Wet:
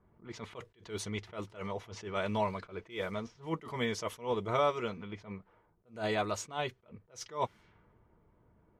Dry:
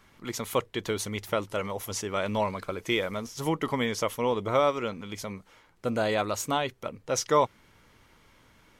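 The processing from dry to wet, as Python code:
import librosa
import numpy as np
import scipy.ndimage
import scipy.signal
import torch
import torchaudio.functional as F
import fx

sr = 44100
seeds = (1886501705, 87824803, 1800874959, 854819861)

y = fx.high_shelf(x, sr, hz=10000.0, db=-7.5)
y = fx.notch_comb(y, sr, f0_hz=270.0)
y = fx.env_lowpass(y, sr, base_hz=680.0, full_db=-26.5)
y = fx.attack_slew(y, sr, db_per_s=190.0)
y = y * 10.0 ** (-3.0 / 20.0)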